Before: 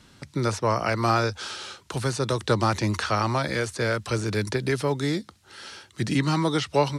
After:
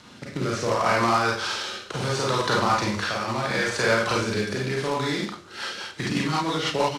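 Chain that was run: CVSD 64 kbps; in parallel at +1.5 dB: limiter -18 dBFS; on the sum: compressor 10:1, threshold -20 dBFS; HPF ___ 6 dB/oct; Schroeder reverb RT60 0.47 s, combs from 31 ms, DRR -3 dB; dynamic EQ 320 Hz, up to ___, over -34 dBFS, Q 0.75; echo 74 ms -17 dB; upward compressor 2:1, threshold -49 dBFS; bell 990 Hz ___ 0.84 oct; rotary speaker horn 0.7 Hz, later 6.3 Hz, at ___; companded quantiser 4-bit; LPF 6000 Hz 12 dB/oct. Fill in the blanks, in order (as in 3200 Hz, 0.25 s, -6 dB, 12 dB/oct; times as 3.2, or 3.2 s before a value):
190 Hz, -4 dB, +4.5 dB, 5.1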